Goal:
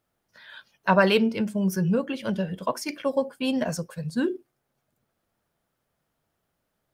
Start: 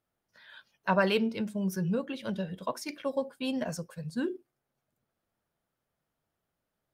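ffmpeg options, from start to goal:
-filter_complex "[0:a]asettb=1/sr,asplit=3[a][b][c];[a]atrim=end=1.224[d];[b]atrim=start=1.22:end=3.48,asetpts=PTS-STARTPTS,afade=t=in:d=0.004:c=qsin,afade=t=out:st=2.256:d=0.004:c=qsin,bandreject=f=3.8k:w=8.4[e];[c]atrim=start=3.476[f];[d][e]acrossfade=d=0.004:c1=hsin:c2=qsin[g];[g][f]acrossfade=d=0.004:c1=qsin:c2=hsin,volume=6.5dB"

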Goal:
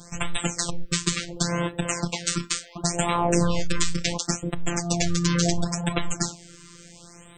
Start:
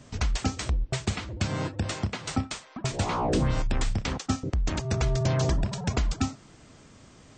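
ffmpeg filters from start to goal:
-af "highshelf=f=5.2k:g=11.5,afftfilt=real='hypot(re,im)*cos(PI*b)':imag='0':win_size=1024:overlap=0.75,equalizer=f=240:w=1.1:g=-2,afftfilt=real='re*(1-between(b*sr/1024,670*pow(5700/670,0.5+0.5*sin(2*PI*0.71*pts/sr))/1.41,670*pow(5700/670,0.5+0.5*sin(2*PI*0.71*pts/sr))*1.41))':imag='im*(1-between(b*sr/1024,670*pow(5700/670,0.5+0.5*sin(2*PI*0.71*pts/sr))/1.41,670*pow(5700/670,0.5+0.5*sin(2*PI*0.71*pts/sr))*1.41))':win_size=1024:overlap=0.75,volume=8dB"

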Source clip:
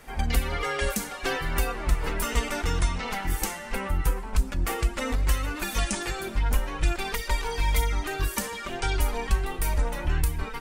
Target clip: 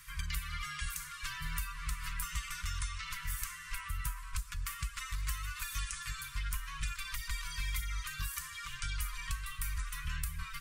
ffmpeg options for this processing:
-filter_complex "[0:a]afftfilt=real='re*(1-between(b*sr/4096,170,970))':imag='im*(1-between(b*sr/4096,170,970))':win_size=4096:overlap=0.75,acrossover=split=620|2200[a][b][c];[a]acompressor=threshold=-28dB:ratio=4[d];[b]acompressor=threshold=-40dB:ratio=4[e];[c]acompressor=threshold=-43dB:ratio=4[f];[d][e][f]amix=inputs=3:normalize=0,highshelf=f=3.3k:g=10,volume=-7dB"

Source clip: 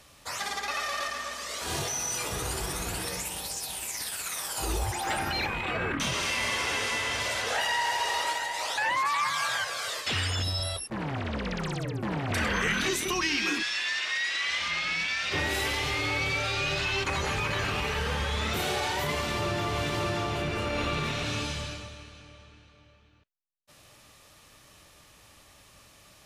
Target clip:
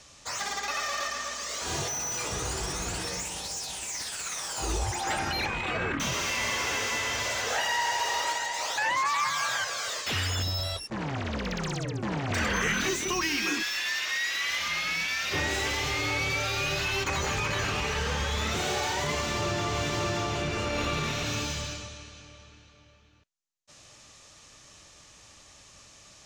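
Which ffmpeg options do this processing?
-filter_complex "[0:a]lowpass=f=6.7k:t=q:w=2.8,acrossover=split=2600[a][b];[b]asoftclip=type=tanh:threshold=-32.5dB[c];[a][c]amix=inputs=2:normalize=0"

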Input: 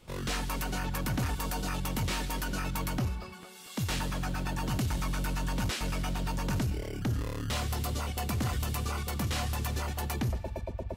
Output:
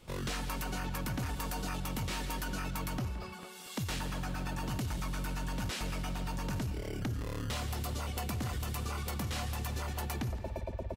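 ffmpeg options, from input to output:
-filter_complex "[0:a]asplit=2[a][b];[b]adelay=170,highpass=300,lowpass=3.4k,asoftclip=type=hard:threshold=-34.5dB,volume=-9dB[c];[a][c]amix=inputs=2:normalize=0,acompressor=threshold=-33dB:ratio=6"

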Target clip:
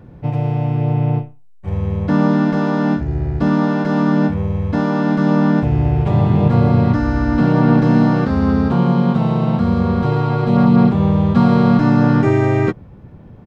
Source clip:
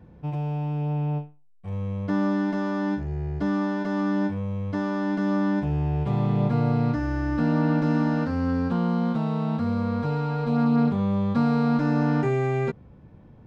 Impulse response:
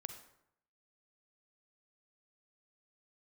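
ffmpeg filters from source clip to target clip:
-filter_complex "[0:a]asplit=2[a][b];[b]asetrate=35002,aresample=44100,atempo=1.25992,volume=-2dB[c];[a][c]amix=inputs=2:normalize=0,volume=7.5dB"

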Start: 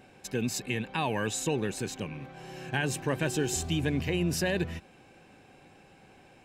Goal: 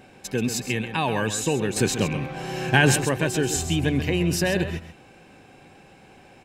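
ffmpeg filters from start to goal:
-filter_complex "[0:a]asettb=1/sr,asplit=3[a][b][c];[a]atrim=end=1.764[d];[b]atrim=start=1.76:end=3.05,asetpts=PTS-STARTPTS,afade=t=in:d=0.004:c=qsin,afade=t=out:st=1.286:d=0.004:c=qsin,acontrast=79[e];[c]atrim=start=3.046[f];[d][e]acrossfade=d=0.004:c1=hsin:c2=qsin[g];[g][f]acrossfade=d=0.004:c1=qsin:c2=hsin,aecho=1:1:132:0.299,volume=5.5dB"

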